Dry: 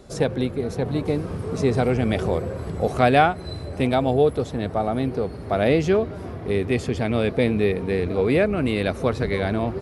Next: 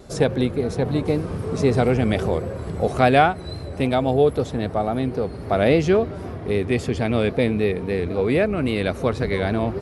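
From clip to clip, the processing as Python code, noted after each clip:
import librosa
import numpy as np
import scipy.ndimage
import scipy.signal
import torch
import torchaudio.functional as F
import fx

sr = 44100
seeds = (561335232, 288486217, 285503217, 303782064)

y = fx.rider(x, sr, range_db=10, speed_s=2.0)
y = fx.vibrato(y, sr, rate_hz=3.7, depth_cents=38.0)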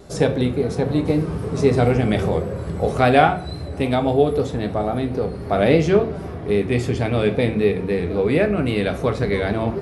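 y = fx.room_shoebox(x, sr, seeds[0], volume_m3=35.0, walls='mixed', distance_m=0.31)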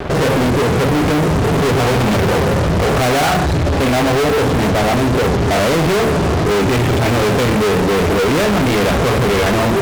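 y = scipy.signal.sosfilt(scipy.signal.butter(4, 2800.0, 'lowpass', fs=sr, output='sos'), x)
y = fx.fuzz(y, sr, gain_db=42.0, gate_db=-44.0)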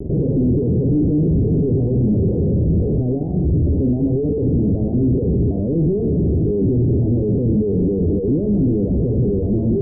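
y = scipy.signal.sosfilt(scipy.signal.cheby2(4, 60, 1300.0, 'lowpass', fs=sr, output='sos'), x)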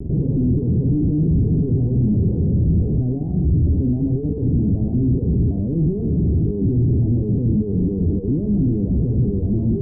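y = fx.peak_eq(x, sr, hz=520.0, db=-11.5, octaves=1.3)
y = F.gain(torch.from_numpy(y), 1.0).numpy()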